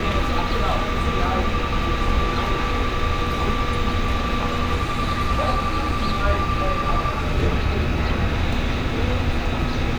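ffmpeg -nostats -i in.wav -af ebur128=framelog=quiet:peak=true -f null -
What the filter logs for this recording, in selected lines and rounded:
Integrated loudness:
  I:         -22.7 LUFS
  Threshold: -32.7 LUFS
Loudness range:
  LRA:         0.6 LU
  Threshold: -42.6 LUFS
  LRA low:   -22.9 LUFS
  LRA high:  -22.3 LUFS
True peak:
  Peak:       -7.6 dBFS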